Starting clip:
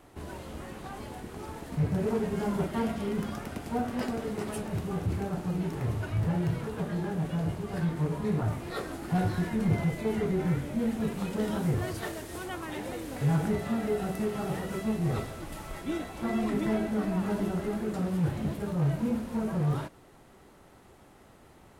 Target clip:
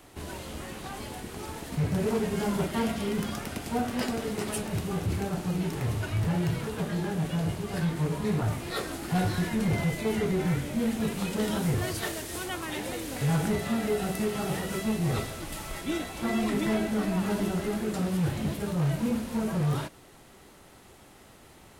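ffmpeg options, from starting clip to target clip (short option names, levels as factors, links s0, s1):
-filter_complex "[0:a]acrossover=split=590|2200[s0][s1][s2];[s0]asoftclip=type=hard:threshold=0.0631[s3];[s2]acontrast=83[s4];[s3][s1][s4]amix=inputs=3:normalize=0,volume=1.19"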